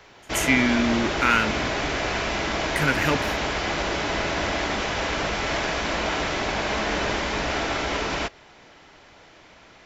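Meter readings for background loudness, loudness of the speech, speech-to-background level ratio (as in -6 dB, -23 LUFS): -25.5 LUFS, -23.5 LUFS, 2.0 dB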